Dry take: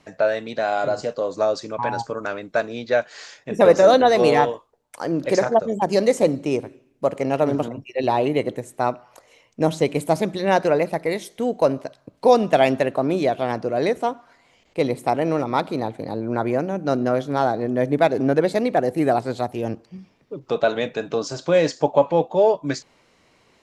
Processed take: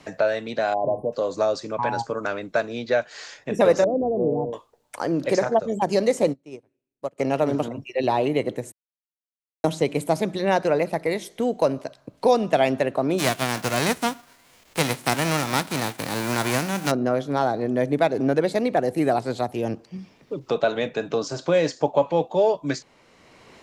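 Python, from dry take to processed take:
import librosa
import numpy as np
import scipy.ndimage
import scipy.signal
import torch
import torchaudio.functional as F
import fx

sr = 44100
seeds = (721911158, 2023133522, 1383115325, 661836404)

y = fx.spec_erase(x, sr, start_s=0.74, length_s=0.39, low_hz=1100.0, high_hz=9400.0)
y = fx.gaussian_blur(y, sr, sigma=16.0, at=(3.84, 4.53))
y = fx.upward_expand(y, sr, threshold_db=-30.0, expansion=2.5, at=(6.32, 7.18), fade=0.02)
y = fx.envelope_flatten(y, sr, power=0.3, at=(13.18, 16.9), fade=0.02)
y = fx.edit(y, sr, fx.silence(start_s=8.72, length_s=0.92), tone=tone)
y = fx.band_squash(y, sr, depth_pct=40)
y = F.gain(torch.from_numpy(y), -2.0).numpy()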